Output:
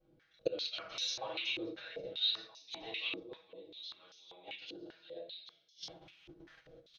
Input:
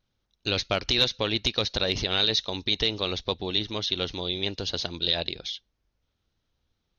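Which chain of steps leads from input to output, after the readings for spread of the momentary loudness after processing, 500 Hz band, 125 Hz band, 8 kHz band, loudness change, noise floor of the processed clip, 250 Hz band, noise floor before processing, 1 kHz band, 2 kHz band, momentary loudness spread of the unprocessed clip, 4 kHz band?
23 LU, -13.0 dB, -27.5 dB, n/a, -13.0 dB, -70 dBFS, -16.0 dB, -78 dBFS, -14.5 dB, -12.0 dB, 7 LU, -13.5 dB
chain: shoebox room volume 170 m³, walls mixed, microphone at 6 m; flipped gate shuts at -18 dBFS, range -36 dB; rotary speaker horn 0.6 Hz; comb 6.2 ms, depth 68%; echo 0.191 s -14 dB; gate -48 dBFS, range -8 dB; high shelf 4300 Hz +5 dB; stepped band-pass 5.1 Hz 350–5800 Hz; gain +17 dB

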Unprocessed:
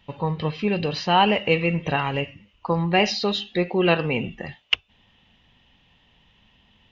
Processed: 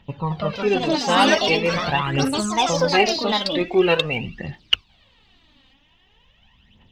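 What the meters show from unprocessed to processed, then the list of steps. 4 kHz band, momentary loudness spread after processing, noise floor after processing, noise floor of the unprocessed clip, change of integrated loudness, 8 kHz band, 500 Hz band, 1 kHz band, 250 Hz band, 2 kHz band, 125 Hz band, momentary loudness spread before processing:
+4.5 dB, 9 LU, -59 dBFS, -61 dBFS, +3.0 dB, n/a, +3.5 dB, +2.5 dB, +2.0 dB, +3.0 dB, -1.0 dB, 10 LU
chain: echoes that change speed 0.241 s, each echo +4 st, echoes 3; phaser 0.44 Hz, delay 3.9 ms, feedback 63%; gain -1 dB

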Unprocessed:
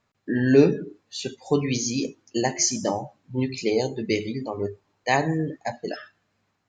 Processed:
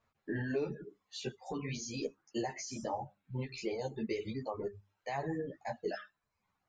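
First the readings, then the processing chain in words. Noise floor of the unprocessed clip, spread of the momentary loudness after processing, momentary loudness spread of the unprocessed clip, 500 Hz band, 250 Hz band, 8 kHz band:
-73 dBFS, 7 LU, 14 LU, -14.0 dB, -15.5 dB, -19.5 dB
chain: compressor 5:1, threshold -22 dBFS, peak gain reduction 11 dB; bell 260 Hz -9.5 dB 1.5 oct; limiter -24 dBFS, peak gain reduction 11 dB; high shelf 2200 Hz -11 dB; notches 50/100/150/200 Hz; reverb removal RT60 0.7 s; ensemble effect; gain +3 dB

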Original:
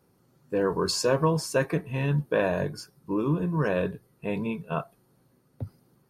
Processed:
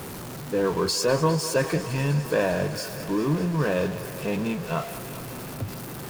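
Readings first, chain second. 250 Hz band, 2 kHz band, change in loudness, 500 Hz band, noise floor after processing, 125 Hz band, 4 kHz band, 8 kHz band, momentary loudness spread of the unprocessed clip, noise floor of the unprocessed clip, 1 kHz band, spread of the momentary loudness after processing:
+2.0 dB, +2.5 dB, +1.5 dB, +2.0 dB, -37 dBFS, +2.0 dB, +4.0 dB, +5.0 dB, 17 LU, -66 dBFS, +2.5 dB, 12 LU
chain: zero-crossing step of -31 dBFS; thinning echo 0.202 s, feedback 83%, high-pass 270 Hz, level -13.5 dB

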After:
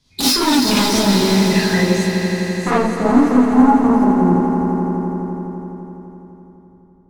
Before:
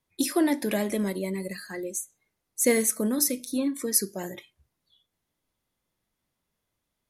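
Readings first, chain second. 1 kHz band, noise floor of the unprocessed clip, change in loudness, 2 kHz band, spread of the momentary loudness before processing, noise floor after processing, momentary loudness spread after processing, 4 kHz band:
+22.0 dB, -82 dBFS, +11.5 dB, +13.0 dB, 14 LU, -49 dBFS, 14 LU, +18.5 dB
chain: tone controls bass +12 dB, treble +14 dB; in parallel at -1 dB: compressor, threshold -26 dBFS, peak gain reduction 20.5 dB; on the sum: low-pass sweep 4500 Hz -> 390 Hz, 1–3.74; resonator 160 Hz, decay 1.6 s, mix 50%; sine folder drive 13 dB, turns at -9 dBFS; on a send: swelling echo 84 ms, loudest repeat 5, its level -11.5 dB; on the sum: non-linear reverb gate 80 ms rising, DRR -5.5 dB; gain -9 dB

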